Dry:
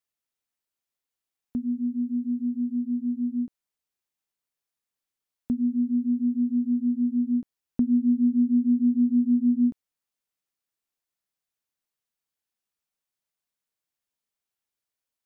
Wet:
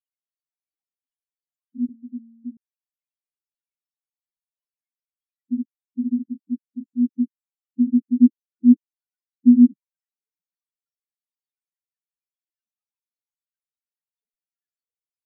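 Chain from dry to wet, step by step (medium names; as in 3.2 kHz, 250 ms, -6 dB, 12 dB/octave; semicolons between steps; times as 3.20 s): random holes in the spectrogram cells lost 81%; 8.16–9.69 s: peaking EQ 370 Hz +11 dB 1.1 oct; loudest bins only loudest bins 2; 1.89–2.57 s: feedback comb 230 Hz, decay 1.4 s, mix 70%; trim +7 dB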